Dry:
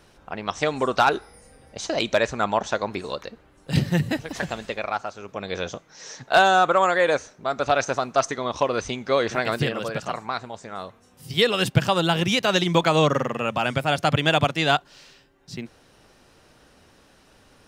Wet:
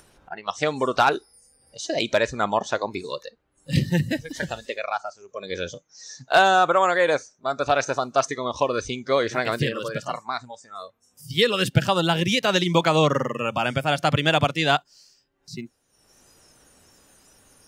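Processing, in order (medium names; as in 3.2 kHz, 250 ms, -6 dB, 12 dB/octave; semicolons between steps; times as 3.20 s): spectral noise reduction 18 dB; upward compressor, threshold -42 dBFS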